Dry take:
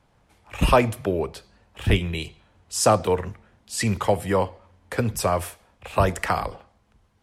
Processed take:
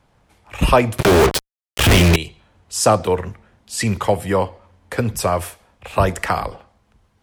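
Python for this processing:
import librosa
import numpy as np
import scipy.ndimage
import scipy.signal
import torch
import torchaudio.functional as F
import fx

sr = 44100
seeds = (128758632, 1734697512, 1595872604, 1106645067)

y = fx.fuzz(x, sr, gain_db=43.0, gate_db=-38.0, at=(0.98, 2.16))
y = y * 10.0 ** (3.5 / 20.0)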